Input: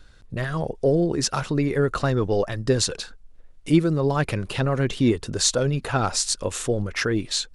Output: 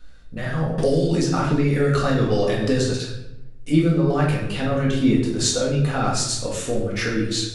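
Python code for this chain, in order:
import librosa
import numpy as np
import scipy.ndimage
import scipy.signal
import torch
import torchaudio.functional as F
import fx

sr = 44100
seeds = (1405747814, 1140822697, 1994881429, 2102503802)

y = fx.notch(x, sr, hz=1000.0, q=14.0)
y = fx.room_shoebox(y, sr, seeds[0], volume_m3=310.0, walls='mixed', distance_m=1.9)
y = fx.band_squash(y, sr, depth_pct=100, at=(0.78, 2.94))
y = y * 10.0 ** (-5.0 / 20.0)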